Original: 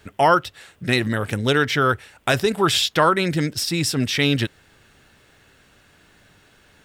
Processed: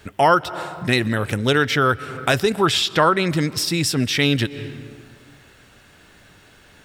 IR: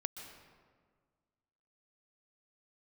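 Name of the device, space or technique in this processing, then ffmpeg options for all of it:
ducked reverb: -filter_complex "[0:a]asplit=3[s0][s1][s2];[1:a]atrim=start_sample=2205[s3];[s1][s3]afir=irnorm=-1:irlink=0[s4];[s2]apad=whole_len=302028[s5];[s4][s5]sidechaincompress=threshold=0.02:ratio=5:attack=40:release=160,volume=0.794[s6];[s0][s6]amix=inputs=2:normalize=0,asettb=1/sr,asplit=3[s7][s8][s9];[s7]atrim=end=2.664[s10];[s8]atrim=start=2.66:end=3.29,asetpts=PTS-STARTPTS,afade=t=in:d=0.004:c=qsin,afade=t=out:st=0.626:d=0.004:c=qsin,highshelf=f=9500:g=-9.5[s11];[s9]atrim=start=3.286[s12];[s10][s11]acrossfade=d=0.004:c1=hsin:c2=qsin[s13];[s13][s12]acrossfade=d=0.004:c1=qsin:c2=hsin"

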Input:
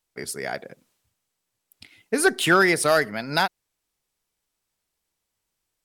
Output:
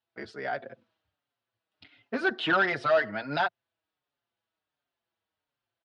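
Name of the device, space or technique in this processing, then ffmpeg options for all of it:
barber-pole flanger into a guitar amplifier: -filter_complex "[0:a]asplit=2[s0][s1];[s1]adelay=5.4,afreqshift=-1.4[s2];[s0][s2]amix=inputs=2:normalize=1,asoftclip=type=tanh:threshold=0.1,highpass=110,equalizer=f=110:t=q:w=4:g=5,equalizer=f=170:t=q:w=4:g=-8,equalizer=f=420:t=q:w=4:g=-3,equalizer=f=660:t=q:w=4:g=5,equalizer=f=1500:t=q:w=4:g=4,equalizer=f=2200:t=q:w=4:g=-5,lowpass=f=3700:w=0.5412,lowpass=f=3700:w=1.3066"

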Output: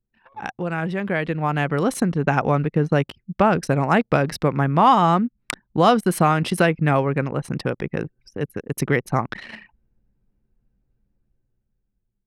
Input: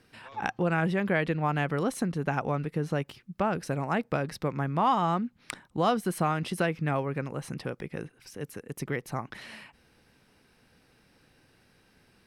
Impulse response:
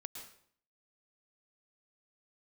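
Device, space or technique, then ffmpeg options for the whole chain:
voice memo with heavy noise removal: -af "anlmdn=0.158,dynaudnorm=f=650:g=5:m=4.47"

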